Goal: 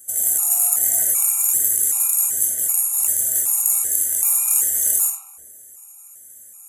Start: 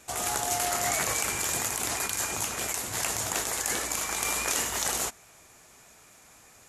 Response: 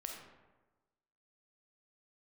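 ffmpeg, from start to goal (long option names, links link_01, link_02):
-filter_complex "[0:a]aexciter=amount=13.8:drive=9.9:freq=7400[link_01];[1:a]atrim=start_sample=2205[link_02];[link_01][link_02]afir=irnorm=-1:irlink=0,afftfilt=real='re*gt(sin(2*PI*1.3*pts/sr)*(1-2*mod(floor(b*sr/1024/730),2)),0)':imag='im*gt(sin(2*PI*1.3*pts/sr)*(1-2*mod(floor(b*sr/1024/730),2)),0)':win_size=1024:overlap=0.75,volume=-5.5dB"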